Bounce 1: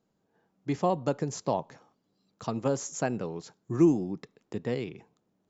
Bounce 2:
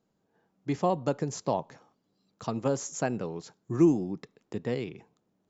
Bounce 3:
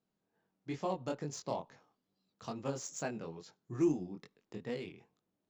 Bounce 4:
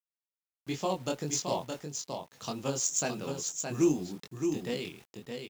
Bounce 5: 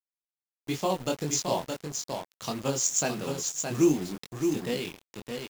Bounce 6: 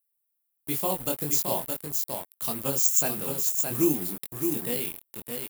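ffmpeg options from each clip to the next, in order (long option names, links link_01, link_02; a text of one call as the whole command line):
ffmpeg -i in.wav -af anull out.wav
ffmpeg -i in.wav -af "flanger=delay=20:depth=4.7:speed=2.3,adynamicsmooth=sensitivity=8:basefreq=4700,highshelf=frequency=2400:gain=10.5,volume=-7dB" out.wav
ffmpeg -i in.wav -af "aexciter=amount=3.1:drive=3.1:freq=2700,acrusher=bits=9:mix=0:aa=0.000001,aecho=1:1:618:0.531,volume=4.5dB" out.wav
ffmpeg -i in.wav -af "acrusher=bits=6:mix=0:aa=0.5,volume=3.5dB" out.wav
ffmpeg -i in.wav -af "aexciter=amount=10.7:drive=4.8:freq=8800,volume=-2dB" out.wav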